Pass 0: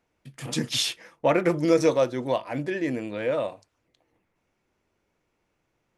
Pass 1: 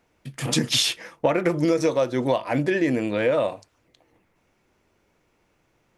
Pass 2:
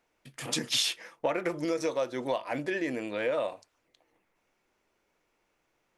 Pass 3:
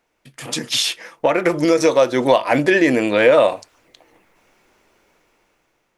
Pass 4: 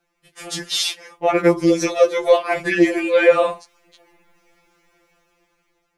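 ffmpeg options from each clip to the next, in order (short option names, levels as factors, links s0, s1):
-af "acompressor=threshold=0.0562:ratio=10,volume=2.51"
-af "equalizer=f=92:w=0.41:g=-11.5,volume=0.501"
-af "dynaudnorm=f=510:g=5:m=3.98,volume=1.88"
-af "afftfilt=real='re*2.83*eq(mod(b,8),0)':imag='im*2.83*eq(mod(b,8),0)':win_size=2048:overlap=0.75"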